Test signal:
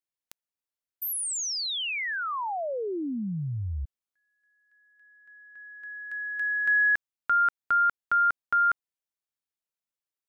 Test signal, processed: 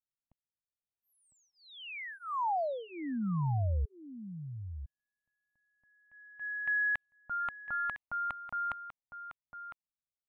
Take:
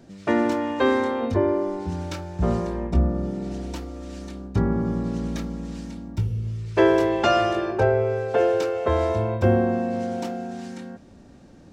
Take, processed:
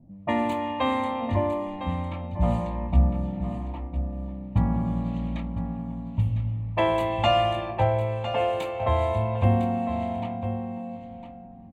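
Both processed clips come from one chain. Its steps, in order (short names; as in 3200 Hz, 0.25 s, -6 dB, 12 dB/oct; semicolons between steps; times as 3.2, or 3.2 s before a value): low-pass opened by the level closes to 330 Hz, open at -19 dBFS; fixed phaser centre 1500 Hz, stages 6; echo 1.005 s -11 dB; gain +1.5 dB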